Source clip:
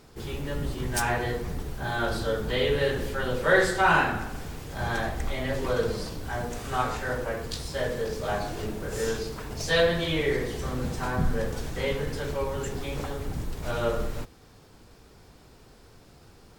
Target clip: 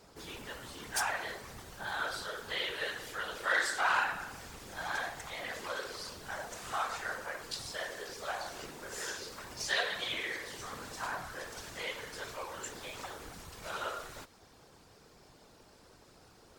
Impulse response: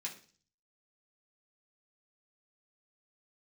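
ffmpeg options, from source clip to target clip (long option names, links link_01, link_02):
-filter_complex "[0:a]asplit=2[link_01][link_02];[link_02]highpass=frequency=720:poles=1,volume=9dB,asoftclip=type=tanh:threshold=-8.5dB[link_03];[link_01][link_03]amix=inputs=2:normalize=0,lowpass=frequency=1200:poles=1,volume=-6dB,acrossover=split=840[link_04][link_05];[link_04]acompressor=threshold=-42dB:ratio=16[link_06];[link_06][link_05]amix=inputs=2:normalize=0,afftfilt=real='hypot(re,im)*cos(2*PI*random(0))':imag='hypot(re,im)*sin(2*PI*random(1))':win_size=512:overlap=0.75,bass=frequency=250:gain=-1,treble=frequency=4000:gain=13,volume=1.5dB" -ar 48000 -c:a libopus -b:a 96k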